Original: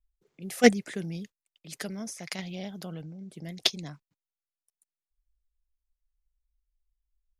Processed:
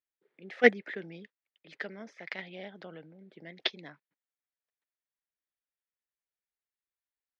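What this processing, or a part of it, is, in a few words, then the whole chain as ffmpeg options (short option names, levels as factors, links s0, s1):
phone earpiece: -af "highpass=370,equalizer=f=720:t=q:w=4:g=-4,equalizer=f=1100:t=q:w=4:g=-5,equalizer=f=1800:t=q:w=4:g=5,equalizer=f=2800:t=q:w=4:g=-4,lowpass=f=3200:w=0.5412,lowpass=f=3200:w=1.3066"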